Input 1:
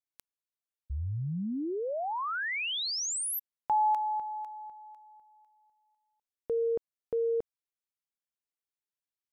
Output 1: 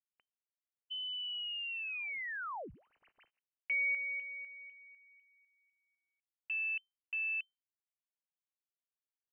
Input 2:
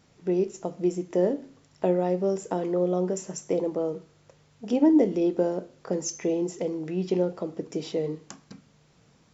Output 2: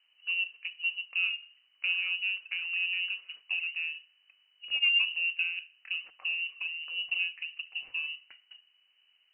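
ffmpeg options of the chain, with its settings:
-af "adynamicsmooth=sensitivity=7:basefreq=1.6k,lowpass=f=2.6k:t=q:w=0.5098,lowpass=f=2.6k:t=q:w=0.6013,lowpass=f=2.6k:t=q:w=0.9,lowpass=f=2.6k:t=q:w=2.563,afreqshift=-3100,volume=-7dB"

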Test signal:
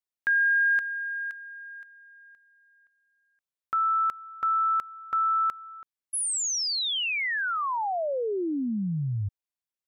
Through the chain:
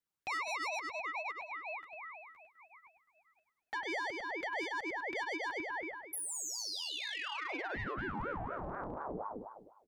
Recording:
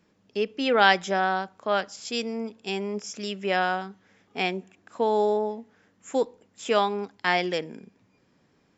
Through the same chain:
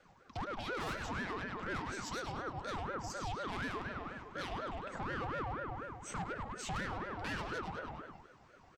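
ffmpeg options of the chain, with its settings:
-filter_complex "[0:a]flanger=delay=4.4:depth=8:regen=-7:speed=0.24:shape=sinusoidal,acrossover=split=170|1200[a][b][c];[b]acontrast=73[d];[a][d][c]amix=inputs=3:normalize=0,aeval=exprs='(tanh(20*val(0)+0.4)-tanh(0.4))/20':c=same,lowshelf=f=310:t=q:w=1.5:g=-10,asplit=2[e][f];[f]adelay=102,lowpass=f=4.5k:p=1,volume=-6dB,asplit=2[g][h];[h]adelay=102,lowpass=f=4.5k:p=1,volume=0.54,asplit=2[i][j];[j]adelay=102,lowpass=f=4.5k:p=1,volume=0.54,asplit=2[k][l];[l]adelay=102,lowpass=f=4.5k:p=1,volume=0.54,asplit=2[m][n];[n]adelay=102,lowpass=f=4.5k:p=1,volume=0.54,asplit=2[o][p];[p]adelay=102,lowpass=f=4.5k:p=1,volume=0.54,asplit=2[q][r];[r]adelay=102,lowpass=f=4.5k:p=1,volume=0.54[s];[g][i][k][m][o][q][s]amix=inputs=7:normalize=0[t];[e][t]amix=inputs=2:normalize=0,acompressor=threshold=-39dB:ratio=6:attack=0.16:release=172:knee=6:detection=rms,aeval=exprs='val(0)*sin(2*PI*650*n/s+650*0.55/4.1*sin(2*PI*4.1*n/s))':c=same,volume=6.5dB"

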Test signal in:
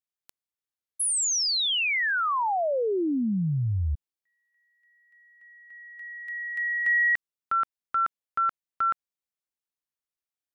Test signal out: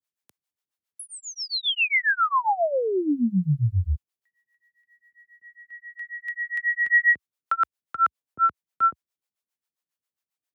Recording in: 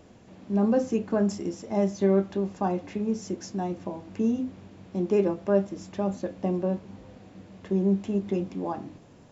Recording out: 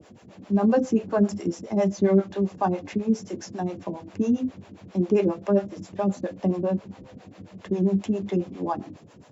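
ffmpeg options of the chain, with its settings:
-filter_complex "[0:a]highpass=f=70:w=0.5412,highpass=f=70:w=1.3066,acrossover=split=170|3800[a][b][c];[c]acompressor=threshold=-49dB:ratio=6:release=64[d];[a][b][d]amix=inputs=3:normalize=0,acrossover=split=440[e][f];[e]aeval=exprs='val(0)*(1-1/2+1/2*cos(2*PI*7.4*n/s))':c=same[g];[f]aeval=exprs='val(0)*(1-1/2-1/2*cos(2*PI*7.4*n/s))':c=same[h];[g][h]amix=inputs=2:normalize=0,volume=7.5dB"

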